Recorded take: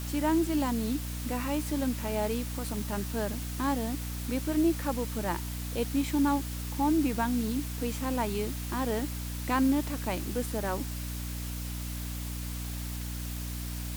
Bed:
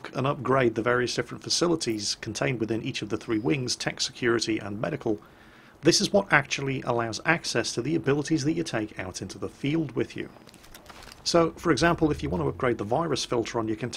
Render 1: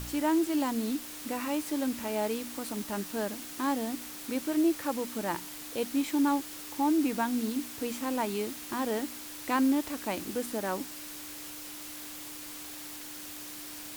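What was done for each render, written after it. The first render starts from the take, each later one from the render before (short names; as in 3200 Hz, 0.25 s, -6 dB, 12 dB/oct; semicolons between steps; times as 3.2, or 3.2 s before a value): de-hum 60 Hz, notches 4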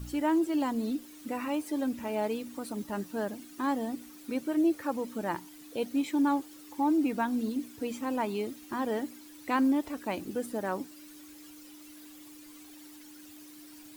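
denoiser 13 dB, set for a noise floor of -43 dBFS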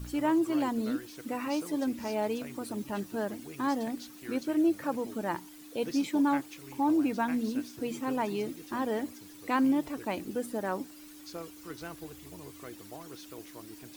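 add bed -21 dB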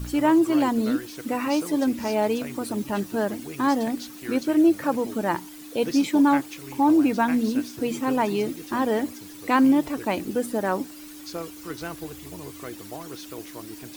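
gain +8 dB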